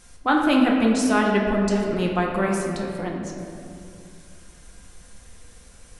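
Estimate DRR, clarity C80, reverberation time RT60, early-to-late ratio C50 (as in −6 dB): −1.0 dB, 3.0 dB, 2.3 s, 2.0 dB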